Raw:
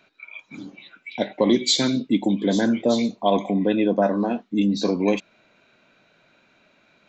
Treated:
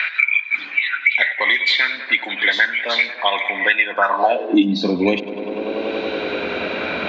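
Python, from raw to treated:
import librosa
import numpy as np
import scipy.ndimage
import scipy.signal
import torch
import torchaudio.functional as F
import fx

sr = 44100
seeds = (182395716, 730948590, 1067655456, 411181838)

p1 = x + fx.echo_tape(x, sr, ms=96, feedback_pct=86, wet_db=-16.0, lp_hz=3000.0, drive_db=2.0, wow_cents=30, dry=0)
p2 = fx.filter_sweep_highpass(p1, sr, from_hz=1900.0, to_hz=71.0, start_s=3.88, end_s=5.14, q=5.6)
p3 = fx.peak_eq(p2, sr, hz=140.0, db=-11.0, octaves=0.81)
p4 = fx.rider(p3, sr, range_db=4, speed_s=0.5)
p5 = p3 + (p4 * librosa.db_to_amplitude(-2.0))
p6 = scipy.signal.sosfilt(scipy.signal.butter(4, 3900.0, 'lowpass', fs=sr, output='sos'), p5)
p7 = fx.low_shelf(p6, sr, hz=220.0, db=4.5)
p8 = fx.band_squash(p7, sr, depth_pct=100)
y = p8 * librosa.db_to_amplitude(2.0)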